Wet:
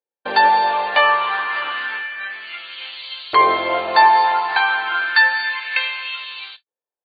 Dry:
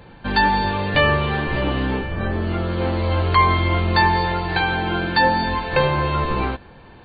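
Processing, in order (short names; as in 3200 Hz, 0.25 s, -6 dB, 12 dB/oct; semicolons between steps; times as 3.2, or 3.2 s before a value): gate -29 dBFS, range -54 dB; LFO high-pass saw up 0.3 Hz 440–4000 Hz; gain +1 dB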